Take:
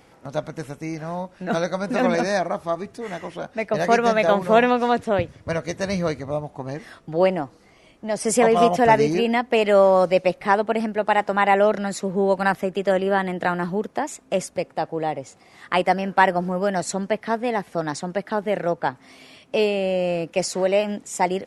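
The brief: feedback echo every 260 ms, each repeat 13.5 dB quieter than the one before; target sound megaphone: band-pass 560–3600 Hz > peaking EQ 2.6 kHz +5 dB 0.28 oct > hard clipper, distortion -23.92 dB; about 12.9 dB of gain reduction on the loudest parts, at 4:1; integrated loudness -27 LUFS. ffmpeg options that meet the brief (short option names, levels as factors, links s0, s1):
-af "acompressor=threshold=0.0447:ratio=4,highpass=560,lowpass=3600,equalizer=f=2600:t=o:w=0.28:g=5,aecho=1:1:260|520:0.211|0.0444,asoftclip=type=hard:threshold=0.0891,volume=2.24"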